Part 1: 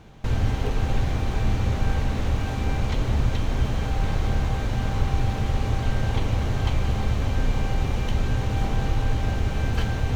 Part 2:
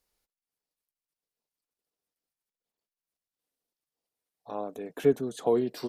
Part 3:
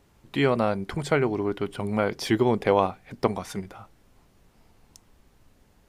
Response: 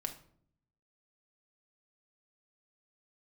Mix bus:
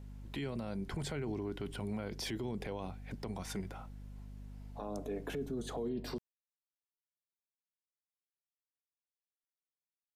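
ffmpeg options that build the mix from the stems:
-filter_complex "[1:a]highshelf=frequency=3900:gain=-9,alimiter=limit=-21dB:level=0:latency=1:release=202,adelay=300,volume=-1.5dB,asplit=2[link_01][link_02];[link_02]volume=-5.5dB[link_03];[2:a]bandreject=frequency=1200:width=12,alimiter=limit=-15dB:level=0:latency=1:release=181,volume=-4.5dB[link_04];[3:a]atrim=start_sample=2205[link_05];[link_03][link_05]afir=irnorm=-1:irlink=0[link_06];[link_01][link_04][link_06]amix=inputs=3:normalize=0,acrossover=split=310|3000[link_07][link_08][link_09];[link_08]acompressor=threshold=-38dB:ratio=6[link_10];[link_07][link_10][link_09]amix=inputs=3:normalize=0,aeval=exprs='val(0)+0.00447*(sin(2*PI*50*n/s)+sin(2*PI*2*50*n/s)/2+sin(2*PI*3*50*n/s)/3+sin(2*PI*4*50*n/s)/4+sin(2*PI*5*50*n/s)/5)':channel_layout=same,alimiter=level_in=6.5dB:limit=-24dB:level=0:latency=1:release=22,volume=-6.5dB"

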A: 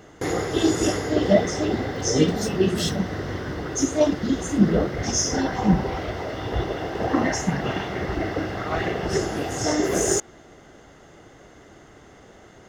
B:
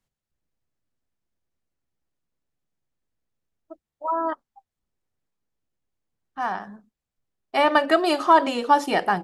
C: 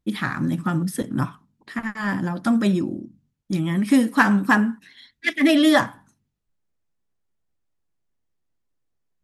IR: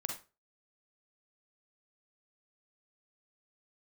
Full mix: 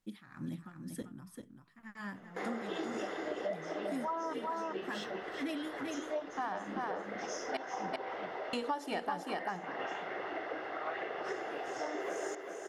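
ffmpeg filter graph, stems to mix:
-filter_complex "[0:a]highpass=160,acrossover=split=400 3100:gain=0.0794 1 0.141[link_01][link_02][link_03];[link_01][link_02][link_03]amix=inputs=3:normalize=0,adelay=2150,volume=-8dB,asplit=2[link_04][link_05];[link_05]volume=-8.5dB[link_06];[1:a]volume=-2dB,asplit=3[link_07][link_08][link_09];[link_07]atrim=end=7.57,asetpts=PTS-STARTPTS,afade=type=out:start_time=7.566:duration=0.004:curve=hsin[link_10];[link_08]atrim=start=7.57:end=8.53,asetpts=PTS-STARTPTS,volume=0[link_11];[link_09]atrim=start=8.53,asetpts=PTS-STARTPTS,afade=type=in:duration=0.004:curve=hsin[link_12];[link_10][link_11][link_12]concat=n=3:v=0:a=1,asplit=3[link_13][link_14][link_15];[link_14]volume=-4dB[link_16];[2:a]tremolo=f=2:d=0.88,volume=-16dB,asplit=2[link_17][link_18];[link_18]volume=-6.5dB[link_19];[link_15]apad=whole_len=407432[link_20];[link_17][link_20]sidechaincompress=threshold=-38dB:ratio=8:attack=16:release=736[link_21];[link_06][link_16][link_19]amix=inputs=3:normalize=0,aecho=0:1:391:1[link_22];[link_04][link_13][link_21][link_22]amix=inputs=4:normalize=0,acompressor=threshold=-34dB:ratio=6"

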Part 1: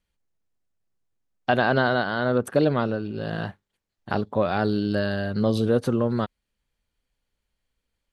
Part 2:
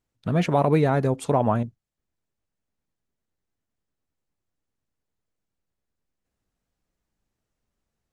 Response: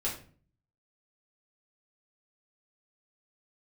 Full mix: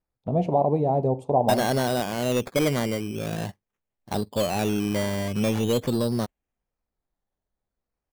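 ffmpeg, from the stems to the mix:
-filter_complex "[0:a]equalizer=frequency=1400:width_type=o:width=0.31:gain=-14,acrusher=samples=13:mix=1:aa=0.000001:lfo=1:lforange=7.8:lforate=0.44,asoftclip=type=tanh:threshold=-16.5dB,volume=0.5dB[link_01];[1:a]highshelf=frequency=2000:width_type=q:width=1.5:gain=8.5,alimiter=limit=-11.5dB:level=0:latency=1:release=231,firequalizer=gain_entry='entry(220,0);entry(780,9);entry(1500,-24)':delay=0.05:min_phase=1,volume=-4dB,asplit=2[link_02][link_03];[link_03]volume=-15.5dB[link_04];[2:a]atrim=start_sample=2205[link_05];[link_04][link_05]afir=irnorm=-1:irlink=0[link_06];[link_01][link_02][link_06]amix=inputs=3:normalize=0,agate=range=-8dB:threshold=-32dB:ratio=16:detection=peak"

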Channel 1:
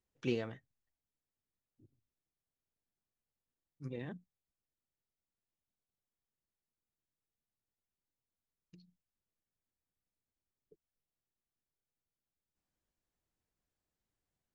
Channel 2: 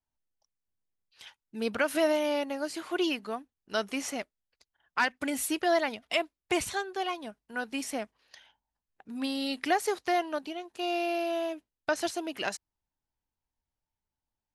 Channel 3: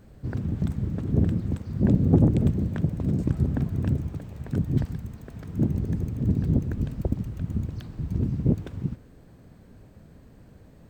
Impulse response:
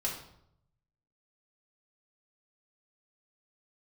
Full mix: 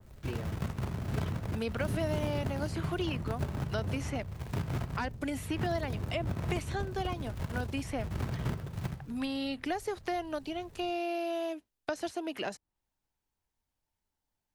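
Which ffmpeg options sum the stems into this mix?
-filter_complex "[0:a]volume=-5dB[link_01];[1:a]volume=2.5dB[link_02];[2:a]firequalizer=gain_entry='entry(110,0);entry(260,-12);entry(380,-6)':delay=0.05:min_phase=1,acrusher=bits=2:mode=log:mix=0:aa=0.000001,adynamicequalizer=threshold=0.00447:dfrequency=1900:dqfactor=0.7:tfrequency=1900:tqfactor=0.7:attack=5:release=100:ratio=0.375:range=3:mode=cutabove:tftype=highshelf,volume=-3.5dB,asplit=2[link_03][link_04];[link_04]volume=-11.5dB[link_05];[3:a]atrim=start_sample=2205[link_06];[link_05][link_06]afir=irnorm=-1:irlink=0[link_07];[link_01][link_02][link_03][link_07]amix=inputs=4:normalize=0,acrossover=split=130|700|3000[link_08][link_09][link_10][link_11];[link_08]acompressor=threshold=-38dB:ratio=4[link_12];[link_09]acompressor=threshold=-34dB:ratio=4[link_13];[link_10]acompressor=threshold=-42dB:ratio=4[link_14];[link_11]acompressor=threshold=-51dB:ratio=4[link_15];[link_12][link_13][link_14][link_15]amix=inputs=4:normalize=0"

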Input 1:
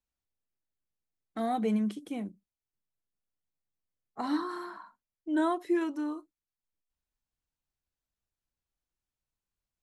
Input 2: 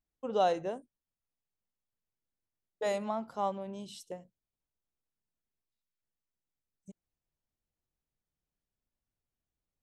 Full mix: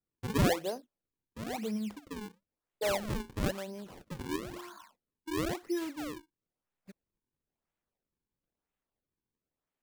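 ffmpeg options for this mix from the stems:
ffmpeg -i stem1.wav -i stem2.wav -filter_complex "[0:a]dynaudnorm=framelen=550:gausssize=5:maxgain=7.5dB,volume=-13dB[link_01];[1:a]highpass=200,equalizer=frequency=5300:width_type=o:width=1.5:gain=-4,volume=1dB[link_02];[link_01][link_02]amix=inputs=2:normalize=0,acrusher=samples=39:mix=1:aa=0.000001:lfo=1:lforange=62.4:lforate=1" out.wav

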